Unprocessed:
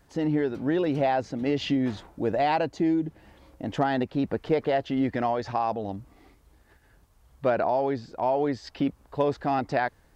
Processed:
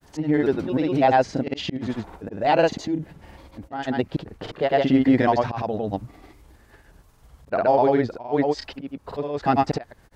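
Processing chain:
volume swells 337 ms
granular cloud, grains 20 per second, pitch spread up and down by 0 semitones
level +9 dB

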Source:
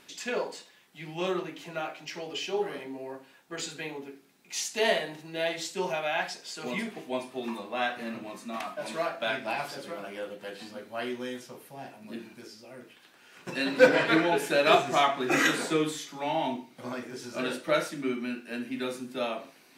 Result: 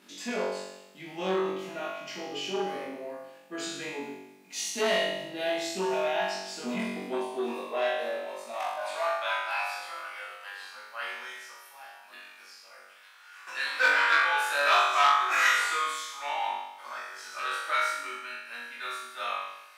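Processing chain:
high-pass filter sweep 220 Hz → 1,200 Hz, 0:06.72–0:09.50
on a send: flutter between parallel walls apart 3.6 metres, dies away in 0.9 s
on the sum: saturating transformer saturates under 1,900 Hz
level −5 dB

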